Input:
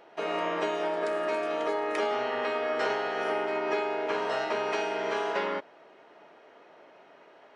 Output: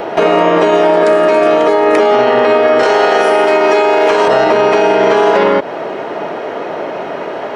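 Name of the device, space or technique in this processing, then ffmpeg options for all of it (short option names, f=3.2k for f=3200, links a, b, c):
mastering chain: -filter_complex "[0:a]asettb=1/sr,asplit=3[a][b][c];[a]atrim=end=2.834[d];[b]atrim=start=2.83:end=4.28,asetpts=PTS-STARTPTS,afade=t=in:d=0.004:c=qsin,afade=t=out:st=1.446:d=0.004:c=qsin,aemphasis=mode=production:type=riaa[e];[c]atrim=start=4.276[f];[d][e]acrossfade=d=0.004:c1=hsin:c2=qsin[g];[g][f]acrossfade=d=0.004:c1=qsin:c2=hsin,equalizer=f=280:t=o:w=0.77:g=-2,acrossover=split=940|2500[h][i][j];[h]acompressor=threshold=-33dB:ratio=4[k];[i]acompressor=threshold=-40dB:ratio=4[l];[j]acompressor=threshold=-46dB:ratio=4[m];[k][l][m]amix=inputs=3:normalize=0,acompressor=threshold=-38dB:ratio=2.5,tiltshelf=f=880:g=5,asoftclip=type=hard:threshold=-29dB,alimiter=level_in=33.5dB:limit=-1dB:release=50:level=0:latency=1,volume=-1dB"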